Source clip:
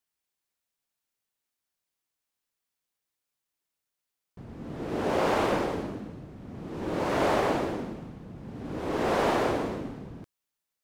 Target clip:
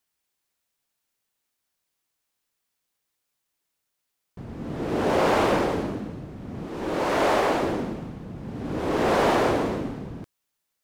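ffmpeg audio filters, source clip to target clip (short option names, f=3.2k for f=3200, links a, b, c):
-filter_complex "[0:a]asettb=1/sr,asplit=3[a][b][c];[a]atrim=end=6.654[d];[b]atrim=start=6.65:end=7.63,asetpts=PTS-STARTPTS,afade=t=in:d=0.004:c=qsin,afade=t=out:st=0.976:d=0.004:c=qsin,equalizer=f=110:w=0.53:g=-7.5[e];[c]atrim=start=7.626[f];[d][e]acrossfade=d=0.004:c1=hsin:c2=qsin[g];[g][f]acrossfade=d=0.004:c1=qsin:c2=hsin,asplit=2[h][i];[i]asoftclip=type=hard:threshold=-29dB,volume=-8dB[j];[h][j]amix=inputs=2:normalize=0,volume=3dB"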